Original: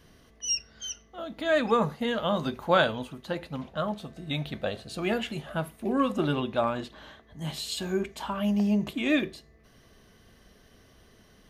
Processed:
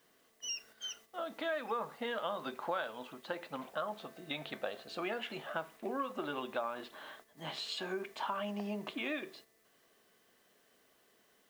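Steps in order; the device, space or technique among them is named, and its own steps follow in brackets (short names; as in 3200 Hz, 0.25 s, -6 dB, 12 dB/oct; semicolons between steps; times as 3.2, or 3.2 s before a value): baby monitor (BPF 360–4000 Hz; compressor 6:1, threshold -34 dBFS, peak gain reduction 15.5 dB; white noise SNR 24 dB; gate -55 dBFS, range -7 dB); dynamic EQ 1200 Hz, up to +4 dB, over -52 dBFS, Q 0.99; gain -2 dB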